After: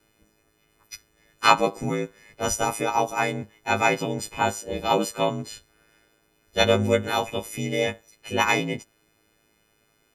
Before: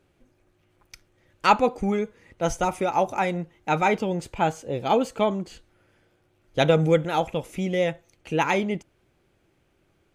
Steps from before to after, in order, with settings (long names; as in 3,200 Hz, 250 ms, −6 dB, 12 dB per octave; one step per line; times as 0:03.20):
every partial snapped to a pitch grid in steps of 3 semitones
ring modulation 54 Hz
level +1.5 dB